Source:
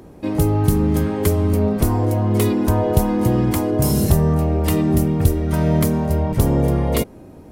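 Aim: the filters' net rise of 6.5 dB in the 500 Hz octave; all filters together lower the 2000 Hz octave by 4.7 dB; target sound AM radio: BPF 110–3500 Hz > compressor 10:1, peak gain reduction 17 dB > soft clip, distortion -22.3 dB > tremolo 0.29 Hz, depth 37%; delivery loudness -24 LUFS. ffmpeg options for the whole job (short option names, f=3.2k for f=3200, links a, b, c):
-af "highpass=110,lowpass=3.5k,equalizer=f=500:t=o:g=8.5,equalizer=f=2k:t=o:g=-6,acompressor=threshold=-26dB:ratio=10,asoftclip=threshold=-20.5dB,tremolo=f=0.29:d=0.37,volume=8.5dB"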